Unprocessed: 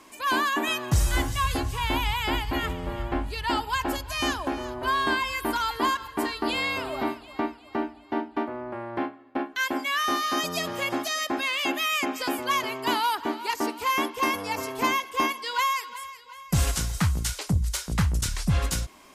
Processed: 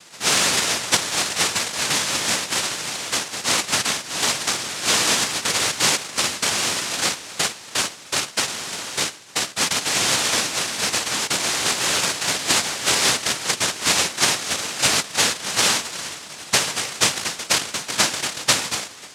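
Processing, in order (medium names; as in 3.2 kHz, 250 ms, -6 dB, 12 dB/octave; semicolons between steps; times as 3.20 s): feedback echo behind a high-pass 308 ms, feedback 75%, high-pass 1.6 kHz, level -14 dB; noise-vocoded speech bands 1; trim +5.5 dB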